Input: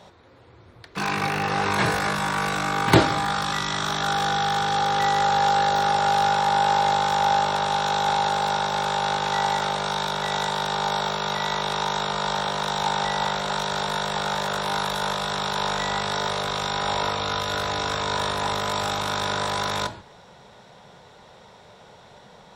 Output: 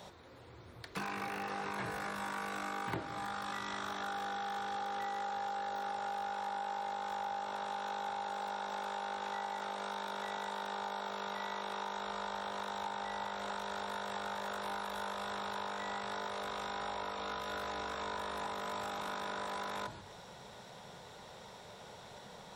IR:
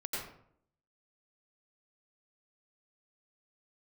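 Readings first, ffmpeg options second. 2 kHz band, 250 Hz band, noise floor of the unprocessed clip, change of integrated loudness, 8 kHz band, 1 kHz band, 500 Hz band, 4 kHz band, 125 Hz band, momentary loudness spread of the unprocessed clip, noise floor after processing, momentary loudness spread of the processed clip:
-15.5 dB, -16.5 dB, -50 dBFS, -16.0 dB, -18.5 dB, -15.5 dB, -15.0 dB, -19.0 dB, -22.0 dB, 5 LU, -53 dBFS, 13 LU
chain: -filter_complex "[0:a]acrossover=split=2600[a][b];[b]acompressor=threshold=-39dB:ratio=4:attack=1:release=60[c];[a][c]amix=inputs=2:normalize=0,highshelf=f=8.3k:g=11.5,bandreject=f=50:t=h:w=6,bandreject=f=100:t=h:w=6,bandreject=f=150:t=h:w=6,acompressor=threshold=-34dB:ratio=6,volume=-3.5dB"

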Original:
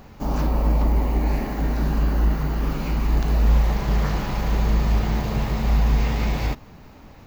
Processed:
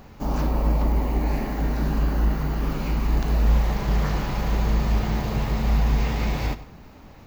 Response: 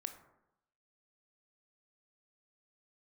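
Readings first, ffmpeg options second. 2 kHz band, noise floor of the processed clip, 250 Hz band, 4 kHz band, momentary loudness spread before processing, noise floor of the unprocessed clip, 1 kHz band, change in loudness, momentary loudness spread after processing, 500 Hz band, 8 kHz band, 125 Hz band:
-1.0 dB, -45 dBFS, -1.0 dB, -1.0 dB, 5 LU, -45 dBFS, -1.0 dB, -1.5 dB, 5 LU, -1.0 dB, -1.0 dB, -1.5 dB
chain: -filter_complex "[0:a]asplit=2[a][b];[1:a]atrim=start_sample=2205,adelay=99[c];[b][c]afir=irnorm=-1:irlink=0,volume=-13dB[d];[a][d]amix=inputs=2:normalize=0,volume=-1dB"

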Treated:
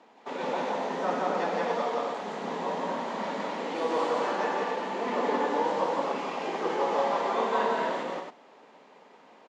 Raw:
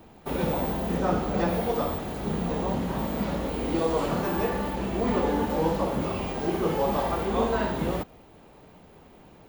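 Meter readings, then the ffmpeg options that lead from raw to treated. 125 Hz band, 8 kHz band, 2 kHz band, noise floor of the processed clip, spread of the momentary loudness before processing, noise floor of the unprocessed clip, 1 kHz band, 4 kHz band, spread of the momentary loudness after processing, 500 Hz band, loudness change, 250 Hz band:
-17.0 dB, -3.5 dB, +2.0 dB, -56 dBFS, 4 LU, -52 dBFS, +2.5 dB, 0.0 dB, 6 LU, -1.5 dB, -2.0 dB, -8.0 dB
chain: -af "highpass=f=270:w=0.5412,highpass=f=270:w=1.3066,equalizer=f=340:t=q:w=4:g=-8,equalizer=f=990:t=q:w=4:g=5,equalizer=f=1.9k:t=q:w=4:g=4,lowpass=f=7k:w=0.5412,lowpass=f=7k:w=1.3066,aecho=1:1:172|271.1:0.891|0.562,volume=-3.5dB"

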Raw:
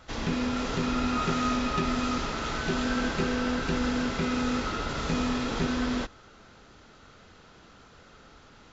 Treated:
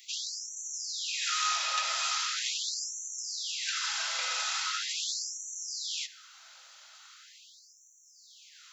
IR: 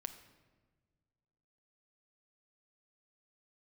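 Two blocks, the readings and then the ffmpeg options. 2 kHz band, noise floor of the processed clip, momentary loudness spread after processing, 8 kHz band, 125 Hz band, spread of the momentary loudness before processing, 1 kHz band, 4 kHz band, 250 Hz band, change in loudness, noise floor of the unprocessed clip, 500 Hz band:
-3.0 dB, -59 dBFS, 23 LU, n/a, under -40 dB, 4 LU, -5.5 dB, +5.0 dB, under -40 dB, -2.5 dB, -54 dBFS, -22.5 dB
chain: -filter_complex "[0:a]aderivative,asplit=2[a][b];[1:a]atrim=start_sample=2205,afade=t=out:st=0.22:d=0.01,atrim=end_sample=10143[c];[b][c]afir=irnorm=-1:irlink=0,volume=3.5dB[d];[a][d]amix=inputs=2:normalize=0,afftfilt=real='re*gte(b*sr/1024,480*pow(5800/480,0.5+0.5*sin(2*PI*0.41*pts/sr)))':imag='im*gte(b*sr/1024,480*pow(5800/480,0.5+0.5*sin(2*PI*0.41*pts/sr)))':win_size=1024:overlap=0.75,volume=6dB"

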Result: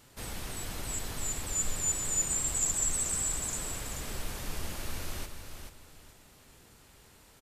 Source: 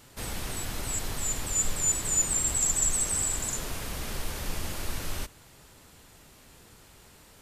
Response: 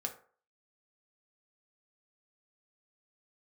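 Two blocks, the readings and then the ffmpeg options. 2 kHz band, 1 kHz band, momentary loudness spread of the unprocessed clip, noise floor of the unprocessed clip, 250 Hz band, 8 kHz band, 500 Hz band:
-4.0 dB, -4.0 dB, 12 LU, -55 dBFS, -3.5 dB, -3.5 dB, -3.5 dB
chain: -af "aecho=1:1:434|868|1302:0.422|0.11|0.0285,volume=-4.5dB"

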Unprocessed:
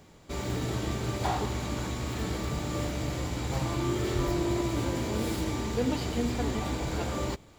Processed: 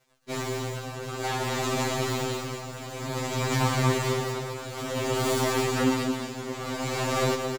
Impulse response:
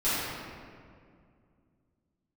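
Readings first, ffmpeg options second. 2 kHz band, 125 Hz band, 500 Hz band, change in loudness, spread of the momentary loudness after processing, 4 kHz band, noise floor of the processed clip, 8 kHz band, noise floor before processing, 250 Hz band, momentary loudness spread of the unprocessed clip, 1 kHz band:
+7.0 dB, +1.0 dB, +4.5 dB, +3.0 dB, 10 LU, +5.5 dB, -38 dBFS, +6.0 dB, -54 dBFS, +0.5 dB, 4 LU, +5.0 dB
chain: -filter_complex "[0:a]aeval=exprs='0.168*(cos(1*acos(clip(val(0)/0.168,-1,1)))-cos(1*PI/2))+0.0376*(cos(8*acos(clip(val(0)/0.168,-1,1)))-cos(8*PI/2))':c=same,highpass=f=200:p=1,aeval=exprs='sgn(val(0))*max(abs(val(0))-0.00251,0)':c=same,asplit=2[a][b];[1:a]atrim=start_sample=2205,adelay=49[c];[b][c]afir=irnorm=-1:irlink=0,volume=-21.5dB[d];[a][d]amix=inputs=2:normalize=0,tremolo=f=0.55:d=0.76,aecho=1:1:217:0.473,afftfilt=real='re*2.45*eq(mod(b,6),0)':imag='im*2.45*eq(mod(b,6),0)':win_size=2048:overlap=0.75,volume=7dB"

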